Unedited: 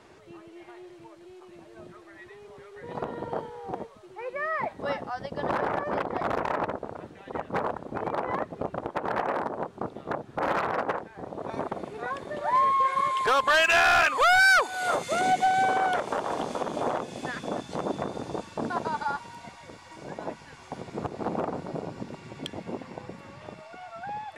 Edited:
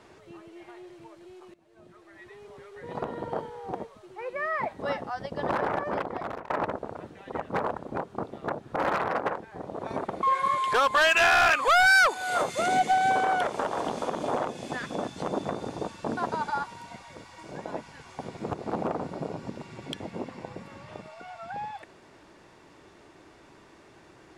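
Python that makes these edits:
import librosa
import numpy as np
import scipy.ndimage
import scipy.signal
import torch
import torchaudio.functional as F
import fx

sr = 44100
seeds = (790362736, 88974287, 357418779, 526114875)

y = fx.edit(x, sr, fx.fade_in_from(start_s=1.54, length_s=0.86, floor_db=-20.5),
    fx.fade_out_to(start_s=5.68, length_s=0.82, curve='qsin', floor_db=-18.5),
    fx.cut(start_s=7.98, length_s=1.63),
    fx.cut(start_s=11.86, length_s=0.9), tone=tone)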